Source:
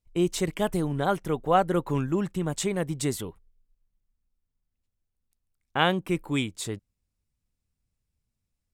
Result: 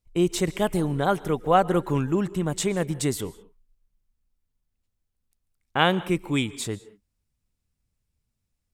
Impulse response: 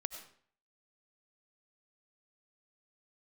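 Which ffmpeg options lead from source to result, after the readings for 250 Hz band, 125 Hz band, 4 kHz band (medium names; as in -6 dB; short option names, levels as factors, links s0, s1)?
+2.5 dB, +2.5 dB, +2.5 dB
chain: -filter_complex "[0:a]asplit=2[s0][s1];[1:a]atrim=start_sample=2205,atrim=end_sample=6615,asetrate=29547,aresample=44100[s2];[s1][s2]afir=irnorm=-1:irlink=0,volume=0.316[s3];[s0][s3]amix=inputs=2:normalize=0"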